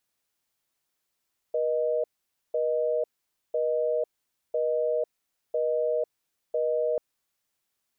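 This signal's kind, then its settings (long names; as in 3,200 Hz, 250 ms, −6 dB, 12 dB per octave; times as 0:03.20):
call progress tone busy tone, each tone −26 dBFS 5.44 s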